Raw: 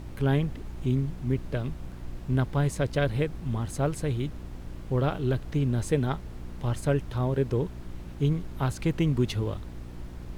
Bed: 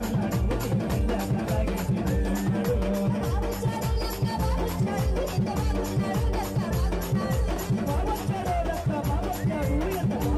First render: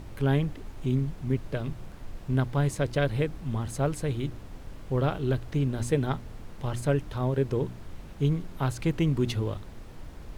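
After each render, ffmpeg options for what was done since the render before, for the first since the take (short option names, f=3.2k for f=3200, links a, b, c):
-af "bandreject=f=60:t=h:w=4,bandreject=f=120:t=h:w=4,bandreject=f=180:t=h:w=4,bandreject=f=240:t=h:w=4,bandreject=f=300:t=h:w=4,bandreject=f=360:t=h:w=4"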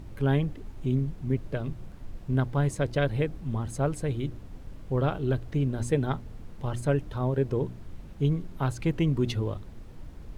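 -af "afftdn=nr=6:nf=-44"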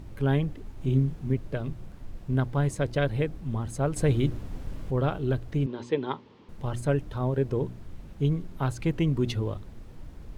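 -filter_complex "[0:a]asettb=1/sr,asplit=3[a][b][c];[a]atrim=end=0.774[d];[b]atrim=start=0.77:end=1.33,asetpts=PTS-STARTPTS,afade=t=in:d=0.004:c=qsin,afade=t=out:st=0.556:d=0.004:c=qsin,asplit=2[e][f];[f]adelay=30,volume=-3.5dB[g];[e][g]amix=inputs=2:normalize=0,atrim=end_sample=24696[h];[c]atrim=start=1.326[i];[d][h]acrossfade=d=0.004:c1=hsin:c2=qsin[j];[j][i]acrossfade=d=0.004:c1=qsin:c2=hsin,asettb=1/sr,asplit=3[k][l][m];[k]atrim=end=3.964[n];[l]atrim=start=3.96:end=4.91,asetpts=PTS-STARTPTS,afade=t=in:d=0.004:c=qsin,afade=t=out:st=0.946:d=0.004:c=qsin,acontrast=65[o];[m]atrim=start=4.906[p];[n][o]acrossfade=d=0.004:c1=hsin:c2=qsin[q];[q][p]acrossfade=d=0.004:c1=qsin:c2=hsin,asettb=1/sr,asplit=3[r][s][t];[r]atrim=end=5.664[u];[s]atrim=start=5.66:end=6.49,asetpts=PTS-STARTPTS,afade=t=in:d=0.004:c=qsin,afade=t=out:st=0.826:d=0.004:c=qsin,highpass=270,equalizer=f=380:t=q:w=4:g=4,equalizer=f=680:t=q:w=4:g=-9,equalizer=f=970:t=q:w=4:g=8,equalizer=f=1.5k:t=q:w=4:g=-5,equalizer=f=3.2k:t=q:w=4:g=4,lowpass=f=5k:w=0.5412,lowpass=f=5k:w=1.3066[v];[t]atrim=start=6.486[w];[u][v]acrossfade=d=0.004:c1=hsin:c2=qsin[x];[x][w]acrossfade=d=0.004:c1=qsin:c2=hsin"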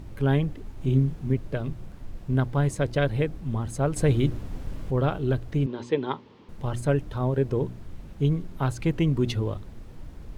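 -af "volume=2dB"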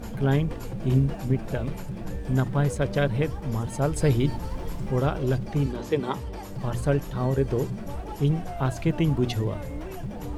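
-filter_complex "[1:a]volume=-9.5dB[a];[0:a][a]amix=inputs=2:normalize=0"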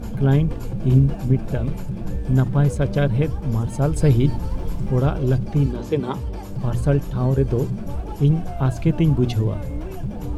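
-af "lowshelf=f=320:g=8,bandreject=f=1.9k:w=12"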